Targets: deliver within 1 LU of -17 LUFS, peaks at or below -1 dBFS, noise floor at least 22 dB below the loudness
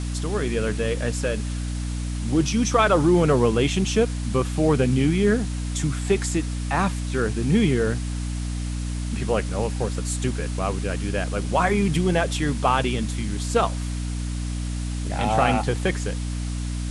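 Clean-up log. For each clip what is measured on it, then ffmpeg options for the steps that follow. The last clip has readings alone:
hum 60 Hz; highest harmonic 300 Hz; hum level -25 dBFS; noise floor -28 dBFS; noise floor target -46 dBFS; loudness -23.5 LUFS; peak level -5.5 dBFS; loudness target -17.0 LUFS
-> -af "bandreject=f=60:t=h:w=6,bandreject=f=120:t=h:w=6,bandreject=f=180:t=h:w=6,bandreject=f=240:t=h:w=6,bandreject=f=300:t=h:w=6"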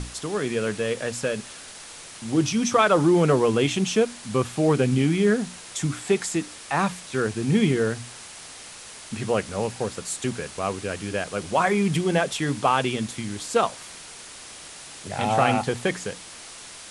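hum not found; noise floor -42 dBFS; noise floor target -46 dBFS
-> -af "afftdn=nr=6:nf=-42"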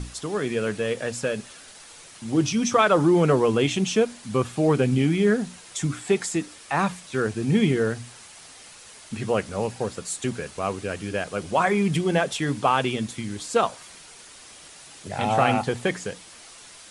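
noise floor -47 dBFS; loudness -24.0 LUFS; peak level -6.0 dBFS; loudness target -17.0 LUFS
-> -af "volume=2.24,alimiter=limit=0.891:level=0:latency=1"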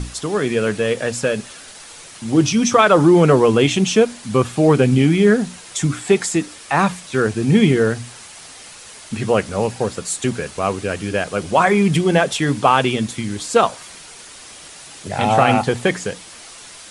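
loudness -17.0 LUFS; peak level -1.0 dBFS; noise floor -40 dBFS

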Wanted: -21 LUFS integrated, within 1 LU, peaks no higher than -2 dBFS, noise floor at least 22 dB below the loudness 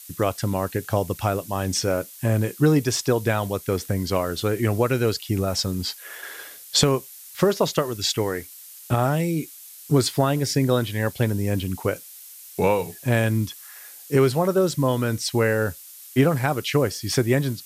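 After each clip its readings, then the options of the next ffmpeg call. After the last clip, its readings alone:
noise floor -43 dBFS; noise floor target -45 dBFS; loudness -23.0 LUFS; peak level -7.0 dBFS; loudness target -21.0 LUFS
-> -af "afftdn=nr=6:nf=-43"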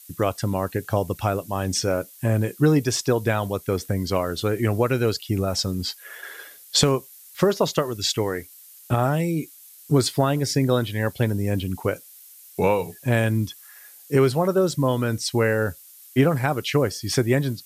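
noise floor -48 dBFS; loudness -23.5 LUFS; peak level -7.0 dBFS; loudness target -21.0 LUFS
-> -af "volume=1.33"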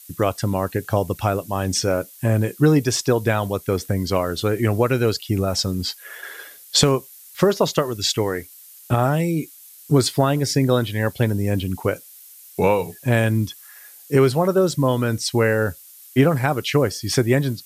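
loudness -21.0 LUFS; peak level -4.5 dBFS; noise floor -45 dBFS

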